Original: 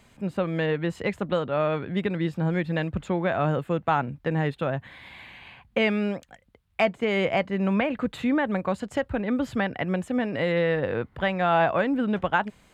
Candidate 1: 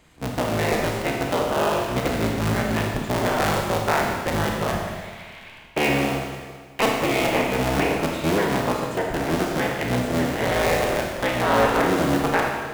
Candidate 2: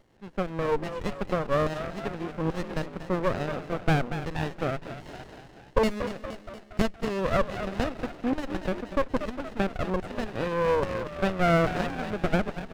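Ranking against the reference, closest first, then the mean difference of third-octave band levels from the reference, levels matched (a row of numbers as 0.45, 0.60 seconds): 2, 1; 9.0, 15.0 decibels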